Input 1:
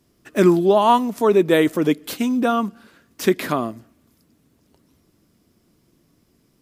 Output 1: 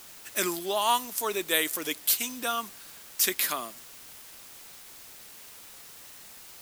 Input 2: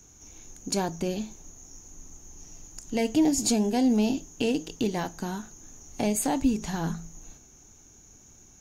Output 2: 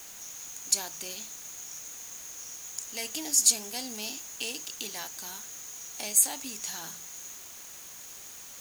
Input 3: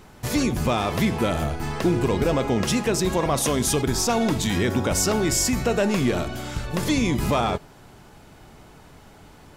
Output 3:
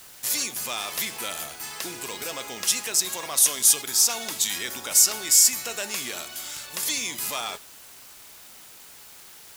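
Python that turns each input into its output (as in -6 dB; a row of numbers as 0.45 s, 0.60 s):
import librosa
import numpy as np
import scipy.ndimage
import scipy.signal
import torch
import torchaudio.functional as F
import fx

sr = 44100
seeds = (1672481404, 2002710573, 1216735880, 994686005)

p1 = np.diff(x, prepend=0.0)
p2 = fx.quant_dither(p1, sr, seeds[0], bits=8, dither='triangular')
p3 = p1 + (p2 * librosa.db_to_amplitude(-3.0))
y = p3 * librosa.db_to_amplitude(3.0)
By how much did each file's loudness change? -8.5 LU, -2.5 LU, +0.5 LU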